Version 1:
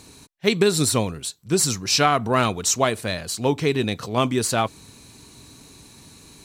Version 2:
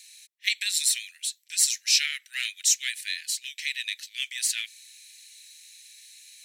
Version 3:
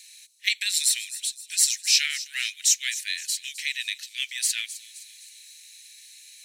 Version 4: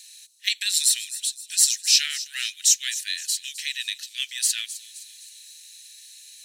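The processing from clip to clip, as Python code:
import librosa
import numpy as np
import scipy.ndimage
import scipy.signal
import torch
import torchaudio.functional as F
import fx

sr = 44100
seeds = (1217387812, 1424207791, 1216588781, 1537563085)

y1 = scipy.signal.sosfilt(scipy.signal.butter(12, 1800.0, 'highpass', fs=sr, output='sos'), x)
y1 = fx.notch(y1, sr, hz=4700.0, q=29.0)
y2 = fx.echo_wet_highpass(y1, sr, ms=260, feedback_pct=47, hz=4700.0, wet_db=-13.0)
y2 = F.gain(torch.from_numpy(y2), 1.5).numpy()
y3 = fx.peak_eq(y2, sr, hz=2200.0, db=-9.5, octaves=0.33)
y3 = F.gain(torch.from_numpy(y3), 2.5).numpy()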